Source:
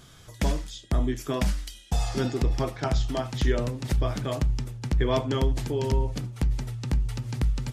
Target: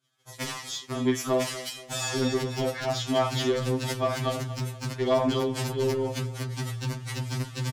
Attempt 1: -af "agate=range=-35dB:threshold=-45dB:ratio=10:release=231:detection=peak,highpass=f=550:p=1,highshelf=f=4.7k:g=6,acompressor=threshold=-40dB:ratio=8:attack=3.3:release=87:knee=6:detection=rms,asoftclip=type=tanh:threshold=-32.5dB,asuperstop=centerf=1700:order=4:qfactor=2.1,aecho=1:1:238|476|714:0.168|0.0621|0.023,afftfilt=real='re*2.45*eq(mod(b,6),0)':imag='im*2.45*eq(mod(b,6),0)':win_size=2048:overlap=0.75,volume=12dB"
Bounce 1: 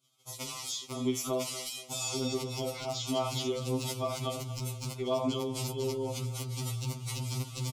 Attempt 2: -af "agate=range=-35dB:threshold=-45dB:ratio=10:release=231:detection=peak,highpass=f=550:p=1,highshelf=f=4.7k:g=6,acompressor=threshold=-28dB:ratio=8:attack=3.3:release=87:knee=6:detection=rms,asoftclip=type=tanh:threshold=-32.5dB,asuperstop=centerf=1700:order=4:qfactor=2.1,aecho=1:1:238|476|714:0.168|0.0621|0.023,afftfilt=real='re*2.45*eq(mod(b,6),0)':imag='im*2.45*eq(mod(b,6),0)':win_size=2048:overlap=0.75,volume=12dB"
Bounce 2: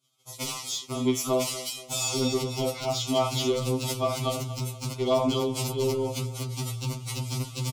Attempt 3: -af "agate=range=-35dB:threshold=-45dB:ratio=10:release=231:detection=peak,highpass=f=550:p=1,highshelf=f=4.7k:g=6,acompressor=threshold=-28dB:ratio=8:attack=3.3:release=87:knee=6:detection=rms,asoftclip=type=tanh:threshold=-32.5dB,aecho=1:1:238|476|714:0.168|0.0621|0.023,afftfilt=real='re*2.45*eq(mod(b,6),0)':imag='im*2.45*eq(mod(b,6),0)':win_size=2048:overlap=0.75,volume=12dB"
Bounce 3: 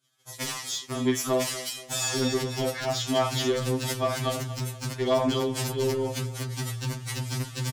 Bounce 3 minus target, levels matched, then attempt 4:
8000 Hz band +4.0 dB
-af "agate=range=-35dB:threshold=-45dB:ratio=10:release=231:detection=peak,highpass=f=550:p=1,highshelf=f=4.7k:g=-2,acompressor=threshold=-28dB:ratio=8:attack=3.3:release=87:knee=6:detection=rms,asoftclip=type=tanh:threshold=-32.5dB,aecho=1:1:238|476|714:0.168|0.0621|0.023,afftfilt=real='re*2.45*eq(mod(b,6),0)':imag='im*2.45*eq(mod(b,6),0)':win_size=2048:overlap=0.75,volume=12dB"

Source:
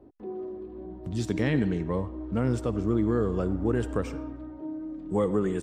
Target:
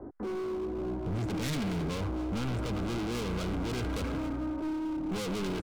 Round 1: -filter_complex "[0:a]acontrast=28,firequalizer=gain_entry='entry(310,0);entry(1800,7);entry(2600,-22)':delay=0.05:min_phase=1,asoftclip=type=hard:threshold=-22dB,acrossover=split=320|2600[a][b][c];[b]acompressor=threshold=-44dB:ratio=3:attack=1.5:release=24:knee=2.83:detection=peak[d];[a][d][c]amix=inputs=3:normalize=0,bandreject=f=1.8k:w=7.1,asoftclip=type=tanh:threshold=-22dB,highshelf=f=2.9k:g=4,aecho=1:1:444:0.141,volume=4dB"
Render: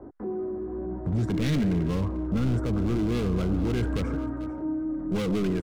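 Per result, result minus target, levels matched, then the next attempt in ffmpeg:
echo 0.178 s late; hard clip: distortion -6 dB
-filter_complex "[0:a]acontrast=28,firequalizer=gain_entry='entry(310,0);entry(1800,7);entry(2600,-22)':delay=0.05:min_phase=1,asoftclip=type=hard:threshold=-22dB,acrossover=split=320|2600[a][b][c];[b]acompressor=threshold=-44dB:ratio=3:attack=1.5:release=24:knee=2.83:detection=peak[d];[a][d][c]amix=inputs=3:normalize=0,bandreject=f=1.8k:w=7.1,asoftclip=type=tanh:threshold=-22dB,highshelf=f=2.9k:g=4,aecho=1:1:266:0.141,volume=4dB"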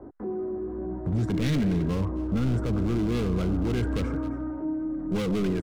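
hard clip: distortion -6 dB
-filter_complex "[0:a]acontrast=28,firequalizer=gain_entry='entry(310,0);entry(1800,7);entry(2600,-22)':delay=0.05:min_phase=1,asoftclip=type=hard:threshold=-33.5dB,acrossover=split=320|2600[a][b][c];[b]acompressor=threshold=-44dB:ratio=3:attack=1.5:release=24:knee=2.83:detection=peak[d];[a][d][c]amix=inputs=3:normalize=0,bandreject=f=1.8k:w=7.1,asoftclip=type=tanh:threshold=-22dB,highshelf=f=2.9k:g=4,aecho=1:1:266:0.141,volume=4dB"

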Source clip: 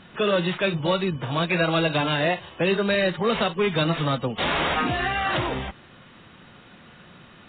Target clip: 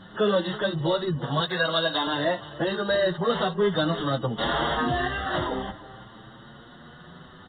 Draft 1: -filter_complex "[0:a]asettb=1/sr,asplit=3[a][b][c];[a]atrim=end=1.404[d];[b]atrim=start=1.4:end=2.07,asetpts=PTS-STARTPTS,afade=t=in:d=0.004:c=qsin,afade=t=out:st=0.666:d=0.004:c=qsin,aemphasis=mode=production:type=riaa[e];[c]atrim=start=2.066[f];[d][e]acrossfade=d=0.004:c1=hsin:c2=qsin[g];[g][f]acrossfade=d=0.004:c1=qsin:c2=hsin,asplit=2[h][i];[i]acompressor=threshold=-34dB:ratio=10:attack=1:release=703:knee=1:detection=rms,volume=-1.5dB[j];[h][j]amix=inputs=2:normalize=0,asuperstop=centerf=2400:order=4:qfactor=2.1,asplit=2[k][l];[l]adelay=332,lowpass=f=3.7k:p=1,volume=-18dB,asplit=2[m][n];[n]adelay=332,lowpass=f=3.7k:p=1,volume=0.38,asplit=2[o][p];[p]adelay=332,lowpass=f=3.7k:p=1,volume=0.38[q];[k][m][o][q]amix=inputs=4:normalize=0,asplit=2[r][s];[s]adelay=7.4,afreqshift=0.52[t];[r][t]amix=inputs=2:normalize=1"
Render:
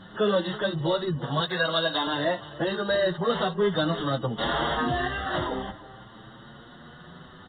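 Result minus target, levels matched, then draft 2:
compressor: peak gain reduction +6.5 dB
-filter_complex "[0:a]asettb=1/sr,asplit=3[a][b][c];[a]atrim=end=1.404[d];[b]atrim=start=1.4:end=2.07,asetpts=PTS-STARTPTS,afade=t=in:d=0.004:c=qsin,afade=t=out:st=0.666:d=0.004:c=qsin,aemphasis=mode=production:type=riaa[e];[c]atrim=start=2.066[f];[d][e]acrossfade=d=0.004:c1=hsin:c2=qsin[g];[g][f]acrossfade=d=0.004:c1=qsin:c2=hsin,asplit=2[h][i];[i]acompressor=threshold=-26.5dB:ratio=10:attack=1:release=703:knee=1:detection=rms,volume=-1.5dB[j];[h][j]amix=inputs=2:normalize=0,asuperstop=centerf=2400:order=4:qfactor=2.1,asplit=2[k][l];[l]adelay=332,lowpass=f=3.7k:p=1,volume=-18dB,asplit=2[m][n];[n]adelay=332,lowpass=f=3.7k:p=1,volume=0.38,asplit=2[o][p];[p]adelay=332,lowpass=f=3.7k:p=1,volume=0.38[q];[k][m][o][q]amix=inputs=4:normalize=0,asplit=2[r][s];[s]adelay=7.4,afreqshift=0.52[t];[r][t]amix=inputs=2:normalize=1"

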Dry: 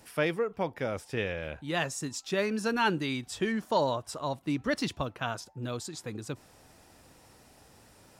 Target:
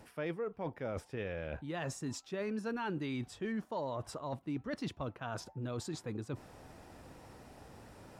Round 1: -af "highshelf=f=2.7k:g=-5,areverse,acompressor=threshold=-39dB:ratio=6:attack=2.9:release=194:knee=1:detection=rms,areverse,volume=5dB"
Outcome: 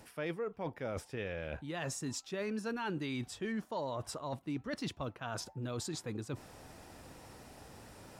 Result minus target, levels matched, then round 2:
4000 Hz band +3.5 dB
-af "highshelf=f=2.7k:g=-12,areverse,acompressor=threshold=-39dB:ratio=6:attack=2.9:release=194:knee=1:detection=rms,areverse,volume=5dB"

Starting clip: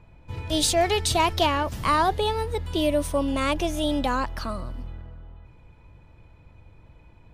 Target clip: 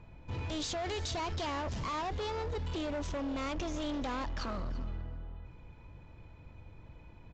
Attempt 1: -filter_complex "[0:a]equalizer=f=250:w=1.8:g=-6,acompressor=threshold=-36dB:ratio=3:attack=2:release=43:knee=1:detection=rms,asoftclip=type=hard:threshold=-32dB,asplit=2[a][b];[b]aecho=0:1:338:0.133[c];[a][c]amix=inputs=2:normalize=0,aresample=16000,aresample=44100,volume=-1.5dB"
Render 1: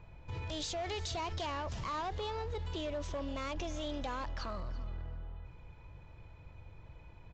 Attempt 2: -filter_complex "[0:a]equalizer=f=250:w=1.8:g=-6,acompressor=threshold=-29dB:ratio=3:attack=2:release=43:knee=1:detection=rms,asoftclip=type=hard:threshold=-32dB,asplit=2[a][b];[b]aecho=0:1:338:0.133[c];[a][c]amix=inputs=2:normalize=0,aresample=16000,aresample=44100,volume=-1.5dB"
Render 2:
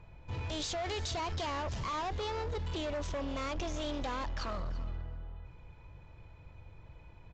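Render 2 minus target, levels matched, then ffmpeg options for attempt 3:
250 Hz band -3.5 dB
-filter_complex "[0:a]equalizer=f=250:w=1.8:g=2,acompressor=threshold=-29dB:ratio=3:attack=2:release=43:knee=1:detection=rms,asoftclip=type=hard:threshold=-32dB,asplit=2[a][b];[b]aecho=0:1:338:0.133[c];[a][c]amix=inputs=2:normalize=0,aresample=16000,aresample=44100,volume=-1.5dB"

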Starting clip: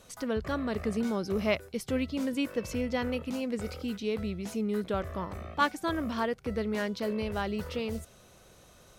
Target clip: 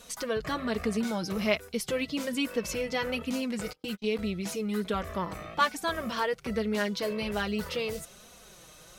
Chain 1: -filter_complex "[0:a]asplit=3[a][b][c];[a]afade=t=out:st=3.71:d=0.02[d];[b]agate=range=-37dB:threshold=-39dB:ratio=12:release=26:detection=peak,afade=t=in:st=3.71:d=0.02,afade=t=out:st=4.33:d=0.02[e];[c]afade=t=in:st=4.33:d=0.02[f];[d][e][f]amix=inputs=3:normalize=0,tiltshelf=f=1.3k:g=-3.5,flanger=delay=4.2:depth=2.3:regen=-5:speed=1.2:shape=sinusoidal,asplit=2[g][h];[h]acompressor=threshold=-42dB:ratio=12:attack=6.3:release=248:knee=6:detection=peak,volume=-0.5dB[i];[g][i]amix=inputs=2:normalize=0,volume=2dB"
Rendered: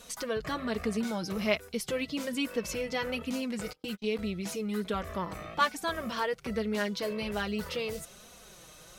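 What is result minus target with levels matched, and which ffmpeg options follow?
compressor: peak gain reduction +7.5 dB
-filter_complex "[0:a]asplit=3[a][b][c];[a]afade=t=out:st=3.71:d=0.02[d];[b]agate=range=-37dB:threshold=-39dB:ratio=12:release=26:detection=peak,afade=t=in:st=3.71:d=0.02,afade=t=out:st=4.33:d=0.02[e];[c]afade=t=in:st=4.33:d=0.02[f];[d][e][f]amix=inputs=3:normalize=0,tiltshelf=f=1.3k:g=-3.5,flanger=delay=4.2:depth=2.3:regen=-5:speed=1.2:shape=sinusoidal,asplit=2[g][h];[h]acompressor=threshold=-34dB:ratio=12:attack=6.3:release=248:knee=6:detection=peak,volume=-0.5dB[i];[g][i]amix=inputs=2:normalize=0,volume=2dB"

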